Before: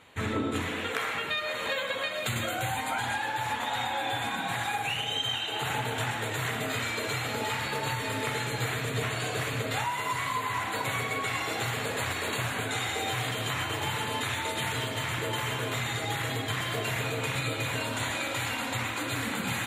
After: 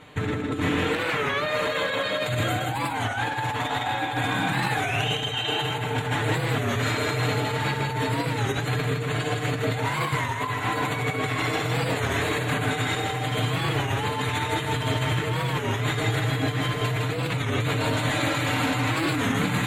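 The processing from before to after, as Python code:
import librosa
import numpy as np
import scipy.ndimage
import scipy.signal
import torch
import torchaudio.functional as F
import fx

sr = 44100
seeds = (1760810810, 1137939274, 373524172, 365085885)

p1 = fx.high_shelf(x, sr, hz=5800.0, db=-6.5)
p2 = p1 + 0.63 * np.pad(p1, (int(6.7 * sr / 1000.0), 0))[:len(p1)]
p3 = fx.over_compress(p2, sr, threshold_db=-32.0, ratio=-0.5)
p4 = np.clip(10.0 ** (22.0 / 20.0) * p3, -1.0, 1.0) / 10.0 ** (22.0 / 20.0)
p5 = fx.low_shelf(p4, sr, hz=380.0, db=7.0)
p6 = p5 + fx.echo_single(p5, sr, ms=160, db=-4.0, dry=0)
p7 = fx.record_warp(p6, sr, rpm=33.33, depth_cents=160.0)
y = F.gain(torch.from_numpy(p7), 3.0).numpy()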